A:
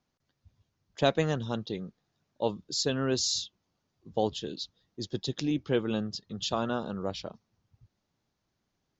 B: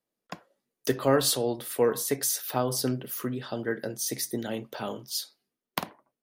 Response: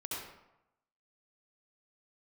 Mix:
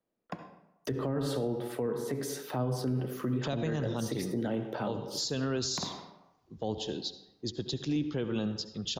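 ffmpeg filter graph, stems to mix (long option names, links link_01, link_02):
-filter_complex "[0:a]adelay=2450,volume=0dB,asplit=2[link_01][link_02];[link_02]volume=-12.5dB[link_03];[1:a]lowpass=frequency=1100:poles=1,bandreject=frequency=420.5:width_type=h:width=4,bandreject=frequency=841:width_type=h:width=4,bandreject=frequency=1261.5:width_type=h:width=4,bandreject=frequency=1682:width_type=h:width=4,bandreject=frequency=2102.5:width_type=h:width=4,bandreject=frequency=2523:width_type=h:width=4,bandreject=frequency=2943.5:width_type=h:width=4,bandreject=frequency=3364:width_type=h:width=4,bandreject=frequency=3784.5:width_type=h:width=4,bandreject=frequency=4205:width_type=h:width=4,bandreject=frequency=4625.5:width_type=h:width=4,bandreject=frequency=5046:width_type=h:width=4,bandreject=frequency=5466.5:width_type=h:width=4,bandreject=frequency=5887:width_type=h:width=4,bandreject=frequency=6307.5:width_type=h:width=4,bandreject=frequency=6728:width_type=h:width=4,bandreject=frequency=7148.5:width_type=h:width=4,bandreject=frequency=7569:width_type=h:width=4,bandreject=frequency=7989.5:width_type=h:width=4,bandreject=frequency=8410:width_type=h:width=4,bandreject=frequency=8830.5:width_type=h:width=4,bandreject=frequency=9251:width_type=h:width=4,bandreject=frequency=9671.5:width_type=h:width=4,bandreject=frequency=10092:width_type=h:width=4,bandreject=frequency=10512.5:width_type=h:width=4,bandreject=frequency=10933:width_type=h:width=4,bandreject=frequency=11353.5:width_type=h:width=4,bandreject=frequency=11774:width_type=h:width=4,bandreject=frequency=12194.5:width_type=h:width=4,volume=2.5dB,asplit=2[link_04][link_05];[link_05]volume=-8.5dB[link_06];[2:a]atrim=start_sample=2205[link_07];[link_03][link_06]amix=inputs=2:normalize=0[link_08];[link_08][link_07]afir=irnorm=-1:irlink=0[link_09];[link_01][link_04][link_09]amix=inputs=3:normalize=0,acrossover=split=240[link_10][link_11];[link_11]acompressor=threshold=-30dB:ratio=4[link_12];[link_10][link_12]amix=inputs=2:normalize=0,alimiter=limit=-23dB:level=0:latency=1:release=36"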